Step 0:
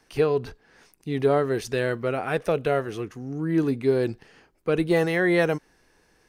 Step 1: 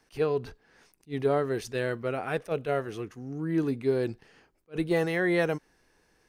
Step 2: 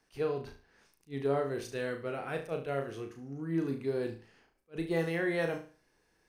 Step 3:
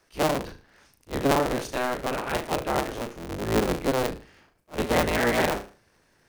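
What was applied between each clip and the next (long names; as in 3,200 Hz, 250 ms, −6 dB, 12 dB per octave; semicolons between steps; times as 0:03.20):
level that may rise only so fast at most 380 dB per second; level −4.5 dB
flutter between parallel walls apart 6.2 metres, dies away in 0.37 s; level −6.5 dB
sub-harmonics by changed cycles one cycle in 3, inverted; level +8 dB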